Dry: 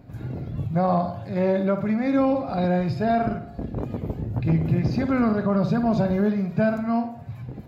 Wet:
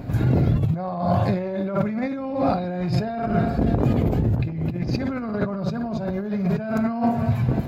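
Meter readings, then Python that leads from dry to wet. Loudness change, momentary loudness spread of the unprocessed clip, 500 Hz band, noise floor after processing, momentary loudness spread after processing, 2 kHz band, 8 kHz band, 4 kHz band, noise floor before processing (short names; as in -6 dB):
+0.5 dB, 10 LU, -1.5 dB, -29 dBFS, 6 LU, -1.0 dB, n/a, +2.5 dB, -40 dBFS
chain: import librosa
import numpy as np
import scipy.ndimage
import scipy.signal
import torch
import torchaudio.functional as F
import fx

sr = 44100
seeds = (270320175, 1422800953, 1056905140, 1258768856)

p1 = x + fx.echo_feedback(x, sr, ms=301, feedback_pct=52, wet_db=-21.0, dry=0)
p2 = fx.over_compress(p1, sr, threshold_db=-31.0, ratio=-1.0)
y = p2 * 10.0 ** (7.5 / 20.0)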